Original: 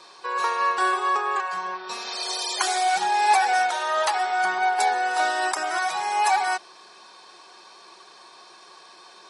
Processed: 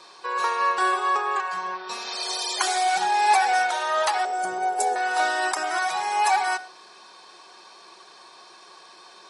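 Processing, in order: 4.25–4.96 graphic EQ 125/250/500/1000/2000/4000/8000 Hz +8/-3/+9/-9/-9/-11/+7 dB; on a send: reverb RT60 0.60 s, pre-delay 59 ms, DRR 17.5 dB

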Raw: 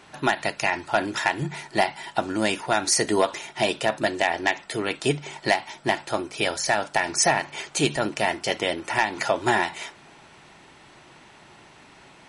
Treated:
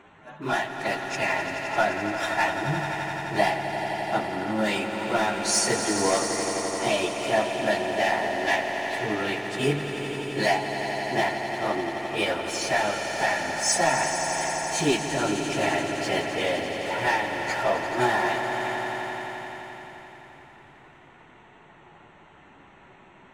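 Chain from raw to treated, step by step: Wiener smoothing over 9 samples; hard clip -11.5 dBFS, distortion -26 dB; plain phase-vocoder stretch 1.9×; on a send: swelling echo 86 ms, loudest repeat 5, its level -11 dB

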